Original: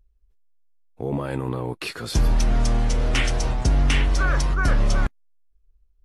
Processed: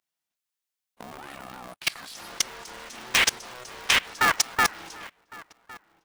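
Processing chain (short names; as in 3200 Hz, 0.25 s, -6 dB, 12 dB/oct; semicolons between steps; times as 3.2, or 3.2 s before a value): HPF 460 Hz 24 dB/oct; tilt shelf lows -7 dB, about 670 Hz; level quantiser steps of 23 dB; outdoor echo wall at 190 m, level -19 dB; polarity switched at an audio rate 250 Hz; gain +4 dB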